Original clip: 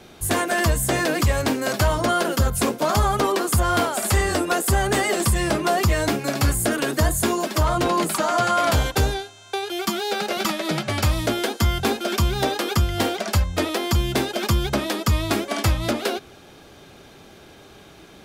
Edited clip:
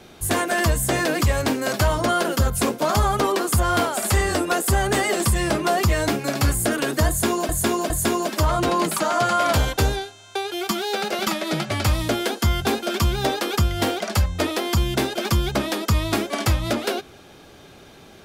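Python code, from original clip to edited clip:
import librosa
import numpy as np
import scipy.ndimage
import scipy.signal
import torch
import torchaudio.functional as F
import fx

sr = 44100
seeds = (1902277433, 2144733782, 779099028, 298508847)

y = fx.edit(x, sr, fx.repeat(start_s=7.08, length_s=0.41, count=3), tone=tone)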